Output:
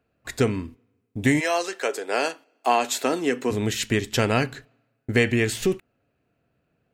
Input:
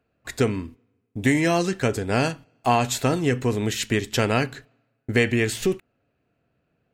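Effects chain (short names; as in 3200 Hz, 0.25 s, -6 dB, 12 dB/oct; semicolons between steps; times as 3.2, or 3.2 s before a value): 1.39–3.5 HPF 490 Hz -> 220 Hz 24 dB/oct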